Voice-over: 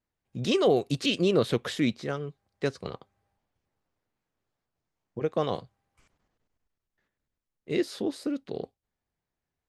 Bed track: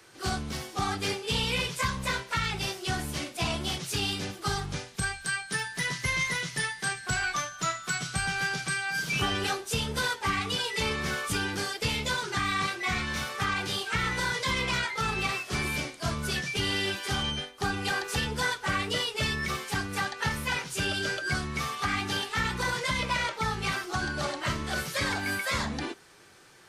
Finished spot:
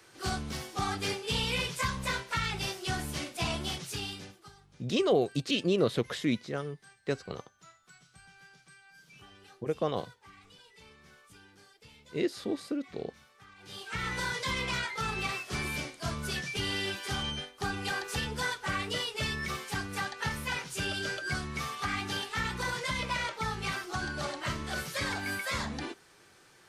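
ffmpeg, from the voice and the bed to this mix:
-filter_complex "[0:a]adelay=4450,volume=0.708[s0];[1:a]volume=10,afade=t=out:st=3.58:d=0.94:silence=0.0630957,afade=t=in:st=13.58:d=0.56:silence=0.0749894[s1];[s0][s1]amix=inputs=2:normalize=0"

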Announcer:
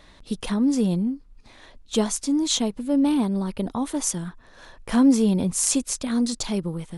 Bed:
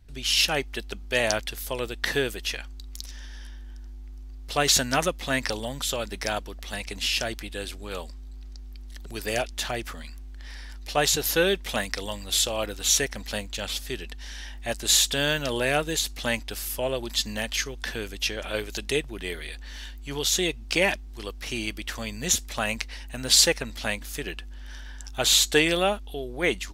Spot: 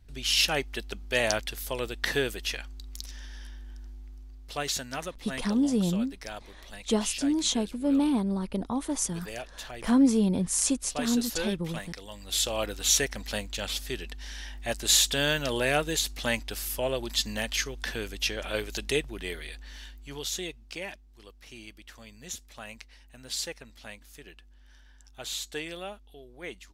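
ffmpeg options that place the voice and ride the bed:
-filter_complex "[0:a]adelay=4950,volume=0.631[s0];[1:a]volume=2.51,afade=t=out:st=3.86:d=0.91:silence=0.334965,afade=t=in:st=12.08:d=0.48:silence=0.316228,afade=t=out:st=18.97:d=1.84:silence=0.199526[s1];[s0][s1]amix=inputs=2:normalize=0"

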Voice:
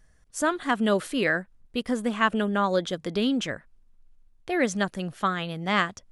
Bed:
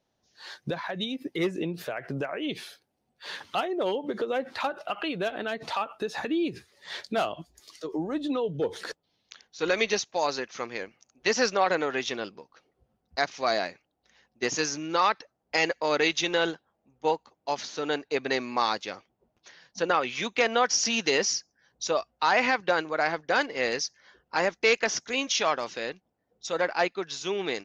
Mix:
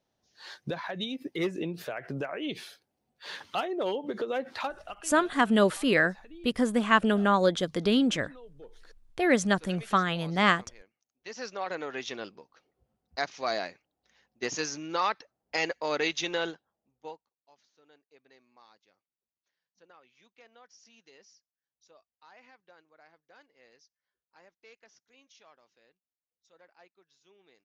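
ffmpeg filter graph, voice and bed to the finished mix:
-filter_complex "[0:a]adelay=4700,volume=1.12[s0];[1:a]volume=5.31,afade=t=out:st=4.55:d=0.56:silence=0.112202,afade=t=in:st=11.19:d=1.1:silence=0.141254,afade=t=out:st=16.29:d=1.01:silence=0.0375837[s1];[s0][s1]amix=inputs=2:normalize=0"

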